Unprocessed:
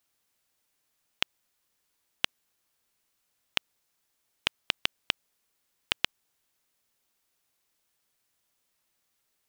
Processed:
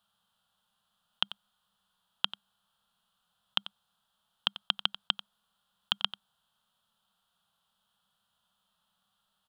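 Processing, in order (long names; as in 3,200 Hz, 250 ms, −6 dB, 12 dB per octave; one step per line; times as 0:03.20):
drawn EQ curve 140 Hz 0 dB, 200 Hz +8 dB, 290 Hz −16 dB, 770 Hz +4 dB, 1,400 Hz +7 dB, 2,200 Hz −16 dB, 3,200 Hz +9 dB, 5,800 Hz −12 dB, 10,000 Hz −6 dB, 16,000 Hz −13 dB
harmonic and percussive parts rebalanced percussive −9 dB
single-tap delay 91 ms −15 dB
level +4.5 dB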